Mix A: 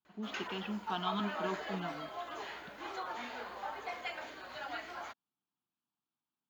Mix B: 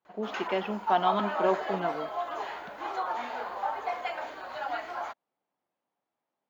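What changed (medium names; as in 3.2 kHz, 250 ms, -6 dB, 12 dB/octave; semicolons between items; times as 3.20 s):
speech: remove static phaser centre 2 kHz, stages 6; master: add peaking EQ 800 Hz +11 dB 1.8 oct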